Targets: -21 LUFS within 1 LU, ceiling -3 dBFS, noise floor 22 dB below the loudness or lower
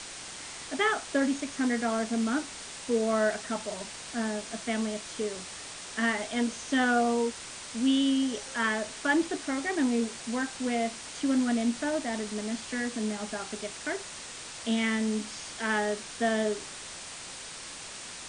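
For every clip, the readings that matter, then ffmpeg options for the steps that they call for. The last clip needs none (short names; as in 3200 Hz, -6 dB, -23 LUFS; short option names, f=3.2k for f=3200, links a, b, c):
noise floor -43 dBFS; noise floor target -53 dBFS; loudness -30.5 LUFS; peak -14.0 dBFS; loudness target -21.0 LUFS
-> -af "afftdn=nr=10:nf=-43"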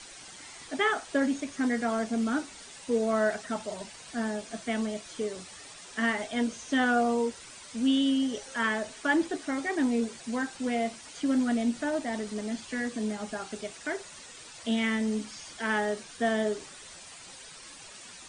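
noise floor -48 dBFS; noise floor target -52 dBFS
-> -af "afftdn=nr=6:nf=-48"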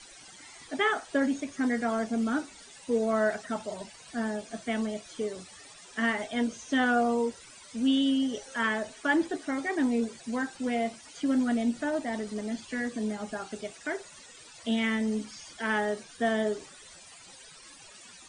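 noise floor -51 dBFS; noise floor target -52 dBFS
-> -af "afftdn=nr=6:nf=-51"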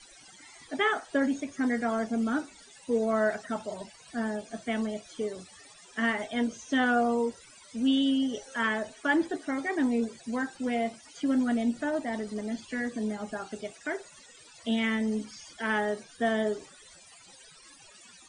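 noise floor -54 dBFS; loudness -30.0 LUFS; peak -14.5 dBFS; loudness target -21.0 LUFS
-> -af "volume=9dB"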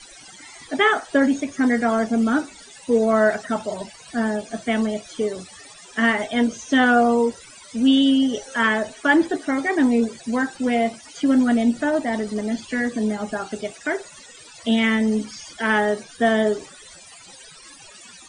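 loudness -21.0 LUFS; peak -5.5 dBFS; noise floor -45 dBFS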